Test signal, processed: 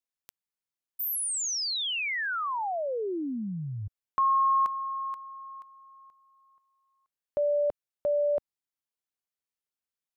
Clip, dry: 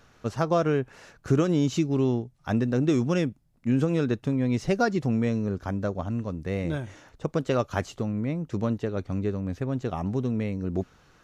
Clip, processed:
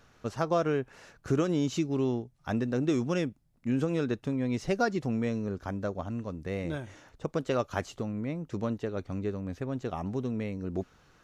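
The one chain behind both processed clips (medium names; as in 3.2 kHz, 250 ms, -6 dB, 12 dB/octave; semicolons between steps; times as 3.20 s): dynamic bell 120 Hz, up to -4 dB, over -36 dBFS, Q 0.74; trim -3 dB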